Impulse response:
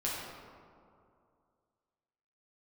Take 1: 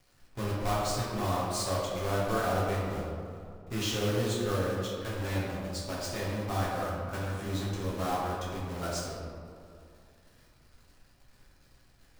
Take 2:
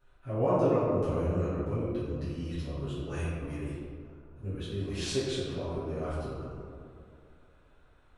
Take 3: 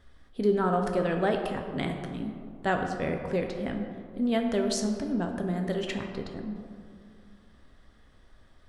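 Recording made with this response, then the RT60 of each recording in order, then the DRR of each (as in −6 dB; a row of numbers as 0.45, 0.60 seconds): 1; 2.4, 2.4, 2.4 seconds; −6.5, −14.0, 3.0 decibels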